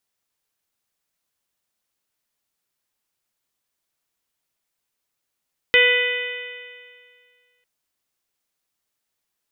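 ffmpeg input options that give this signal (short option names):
-f lavfi -i "aevalsrc='0.133*pow(10,-3*t/1.99)*sin(2*PI*490.37*t)+0.0178*pow(10,-3*t/1.99)*sin(2*PI*982.94*t)+0.0596*pow(10,-3*t/1.99)*sin(2*PI*1479.89*t)+0.237*pow(10,-3*t/1.99)*sin(2*PI*1983.38*t)+0.133*pow(10,-3*t/1.99)*sin(2*PI*2495.51*t)+0.119*pow(10,-3*t/1.99)*sin(2*PI*3018.34*t)+0.0473*pow(10,-3*t/1.99)*sin(2*PI*3553.82*t)':d=1.9:s=44100"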